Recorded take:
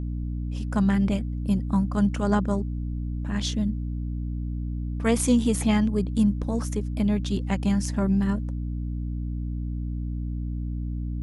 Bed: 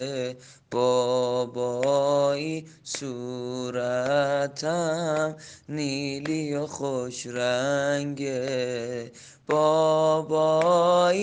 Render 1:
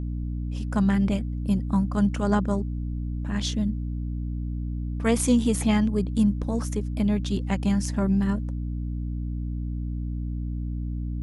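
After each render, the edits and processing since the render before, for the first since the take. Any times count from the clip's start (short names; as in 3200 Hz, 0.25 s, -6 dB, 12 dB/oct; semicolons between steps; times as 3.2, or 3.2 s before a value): nothing audible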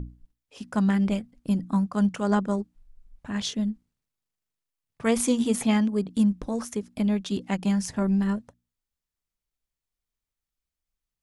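notches 60/120/180/240/300 Hz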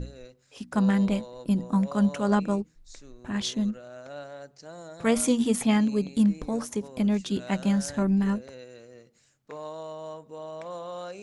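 add bed -17.5 dB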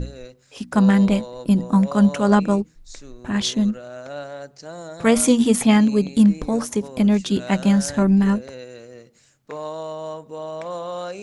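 gain +7.5 dB; limiter -2 dBFS, peak gain reduction 1 dB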